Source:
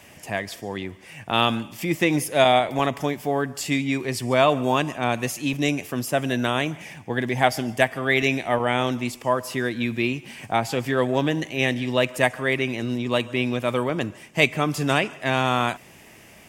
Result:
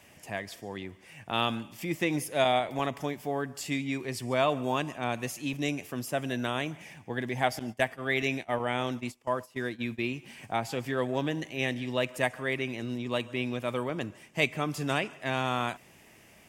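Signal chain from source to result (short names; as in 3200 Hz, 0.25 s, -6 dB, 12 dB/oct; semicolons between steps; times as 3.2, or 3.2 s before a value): 7.59–10.16 gate -27 dBFS, range -18 dB; gain -8 dB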